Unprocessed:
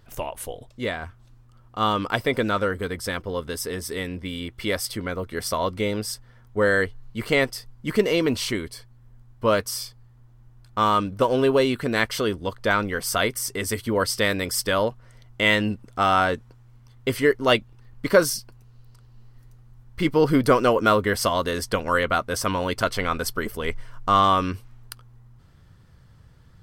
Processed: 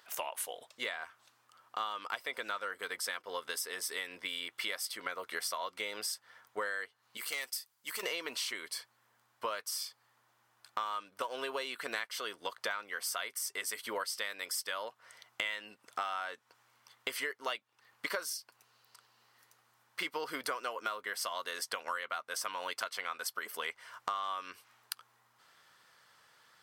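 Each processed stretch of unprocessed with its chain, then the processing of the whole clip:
7.17–8.03 pre-emphasis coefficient 0.8 + overloaded stage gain 28.5 dB
whole clip: HPF 910 Hz 12 dB/oct; compressor 10:1, threshold -37 dBFS; gain +3 dB

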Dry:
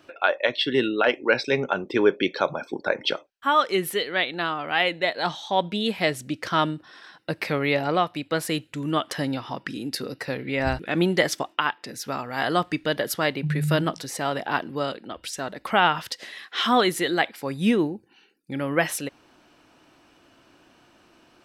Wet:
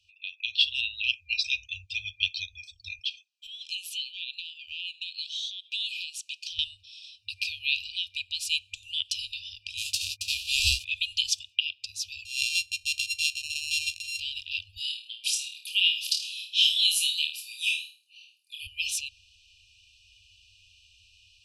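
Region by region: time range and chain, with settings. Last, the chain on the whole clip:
2.99–6.59 HPF 860 Hz + compressor 12:1, threshold -31 dBFS
9.77–10.83 spectral whitening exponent 0.3 + gate -40 dBFS, range -32 dB
12.25–14.2 sample sorter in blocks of 32 samples + de-esser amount 35% + low shelf 110 Hz -8.5 dB
14.77–18.67 HPF 1200 Hz + bell 11000 Hz +13.5 dB 0.44 oct + flutter echo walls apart 4.5 m, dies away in 0.36 s
whole clip: LPF 6900 Hz 12 dB/oct; FFT band-reject 100–2400 Hz; AGC gain up to 11.5 dB; gain -5.5 dB

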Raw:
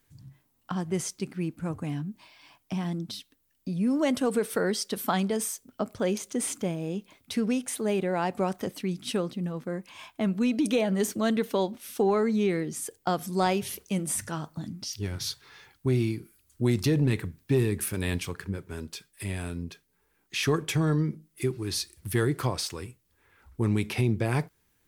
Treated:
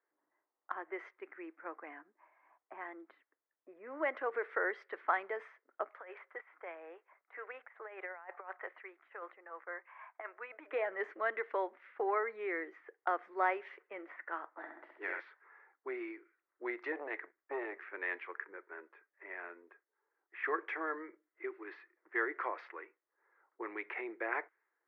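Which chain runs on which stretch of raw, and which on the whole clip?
5.88–10.73 HPF 700 Hz + negative-ratio compressor -37 dBFS, ratio -0.5
14.56–15.19 spectral limiter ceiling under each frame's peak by 15 dB + flutter echo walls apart 11.3 m, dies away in 0.85 s
16.92–17.93 G.711 law mismatch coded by A + core saturation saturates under 350 Hz
whole clip: Chebyshev band-pass 330–2000 Hz, order 4; low-pass opened by the level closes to 870 Hz, open at -29 dBFS; differentiator; gain +14 dB

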